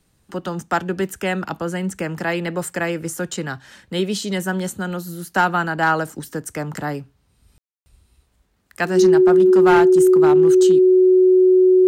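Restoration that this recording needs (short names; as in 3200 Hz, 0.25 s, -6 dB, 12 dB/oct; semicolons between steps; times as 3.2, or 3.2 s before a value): clip repair -7.5 dBFS; notch 370 Hz, Q 30; room tone fill 7.58–7.86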